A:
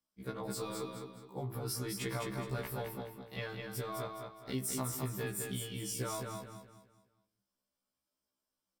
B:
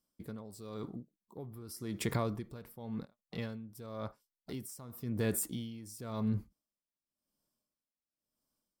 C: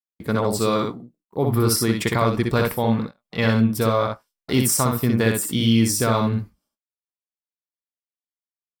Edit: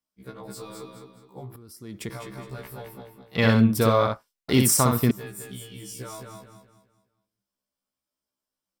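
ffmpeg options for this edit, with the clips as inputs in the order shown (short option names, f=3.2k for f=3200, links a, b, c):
-filter_complex "[0:a]asplit=3[a][b][c];[a]atrim=end=1.562[d];[1:a]atrim=start=1.558:end=2.102[e];[b]atrim=start=2.098:end=3.352[f];[2:a]atrim=start=3.348:end=5.112[g];[c]atrim=start=5.108[h];[d][e]acrossfade=d=0.004:c1=hsin:c2=hsin[i];[i][f]acrossfade=d=0.004:c1=hsin:c2=hsin[j];[j][g]acrossfade=d=0.004:c1=hsin:c2=hsin[k];[k][h]acrossfade=d=0.004:c1=hsin:c2=hsin"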